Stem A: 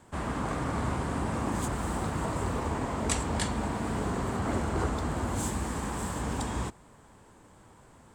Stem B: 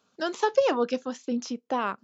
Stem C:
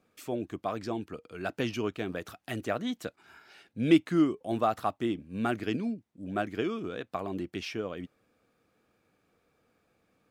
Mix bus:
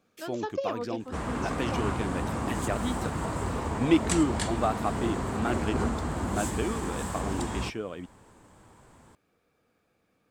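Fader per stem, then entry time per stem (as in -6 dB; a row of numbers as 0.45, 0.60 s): 0.0, -10.0, -0.5 dB; 1.00, 0.00, 0.00 s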